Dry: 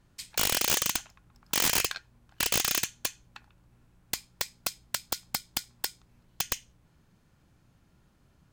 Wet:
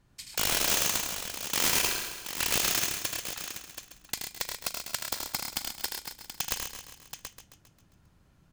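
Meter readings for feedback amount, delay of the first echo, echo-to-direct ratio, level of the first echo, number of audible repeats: no steady repeat, 40 ms, -0.5 dB, -15.5 dB, 18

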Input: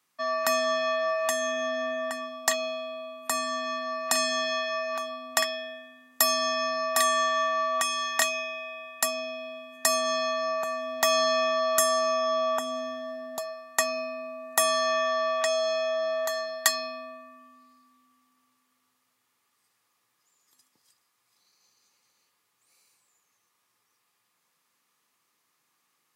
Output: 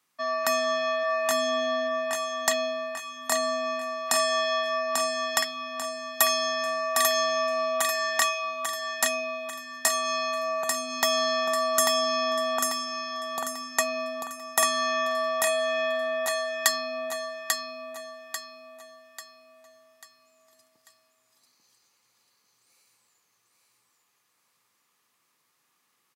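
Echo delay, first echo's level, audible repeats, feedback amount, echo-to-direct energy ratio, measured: 0.842 s, -4.0 dB, 4, 40%, -3.0 dB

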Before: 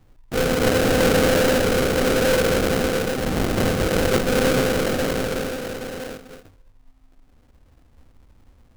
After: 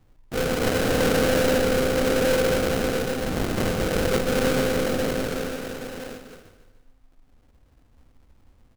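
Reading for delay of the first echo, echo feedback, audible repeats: 0.147 s, 48%, 4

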